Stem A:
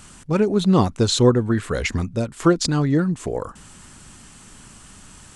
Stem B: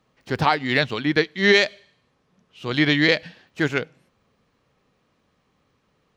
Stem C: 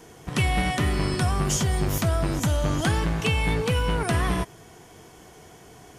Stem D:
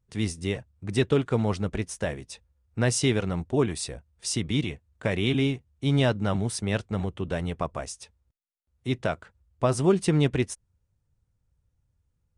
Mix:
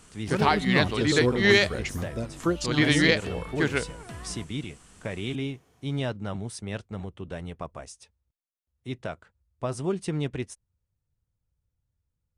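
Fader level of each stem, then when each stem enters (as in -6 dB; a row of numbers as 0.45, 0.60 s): -9.5, -3.5, -17.5, -7.0 dB; 0.00, 0.00, 0.00, 0.00 s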